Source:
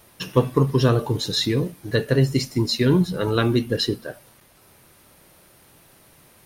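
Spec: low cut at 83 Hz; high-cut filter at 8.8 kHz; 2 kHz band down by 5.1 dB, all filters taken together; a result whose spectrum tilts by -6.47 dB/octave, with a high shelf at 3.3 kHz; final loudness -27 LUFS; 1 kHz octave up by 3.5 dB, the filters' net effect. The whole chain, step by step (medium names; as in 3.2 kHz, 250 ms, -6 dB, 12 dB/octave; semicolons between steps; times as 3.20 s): high-pass 83 Hz; low-pass 8.8 kHz; peaking EQ 1 kHz +7 dB; peaking EQ 2 kHz -8.5 dB; treble shelf 3.3 kHz -5 dB; trim -5 dB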